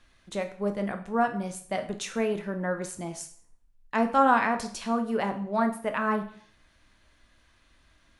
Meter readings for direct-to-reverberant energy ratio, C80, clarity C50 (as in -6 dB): 6.0 dB, 15.5 dB, 11.5 dB